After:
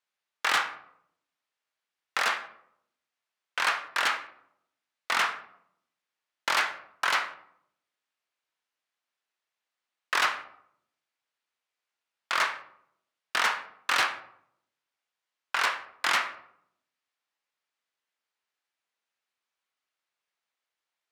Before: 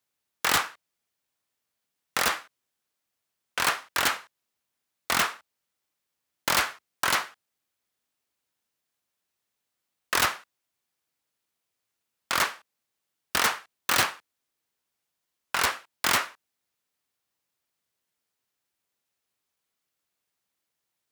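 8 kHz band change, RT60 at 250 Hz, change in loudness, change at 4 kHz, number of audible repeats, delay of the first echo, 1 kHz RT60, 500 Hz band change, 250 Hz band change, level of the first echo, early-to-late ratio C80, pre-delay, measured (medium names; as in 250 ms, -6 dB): -8.5 dB, 0.90 s, -2.0 dB, -2.5 dB, no echo, no echo, 0.65 s, -4.5 dB, -10.0 dB, no echo, 15.0 dB, 15 ms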